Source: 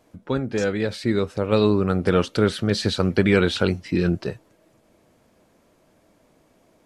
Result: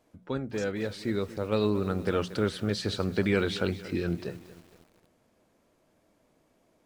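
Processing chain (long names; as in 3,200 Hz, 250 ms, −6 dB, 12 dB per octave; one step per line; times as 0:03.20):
mains-hum notches 60/120/180 Hz
feedback echo at a low word length 231 ms, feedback 55%, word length 6 bits, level −15 dB
level −8 dB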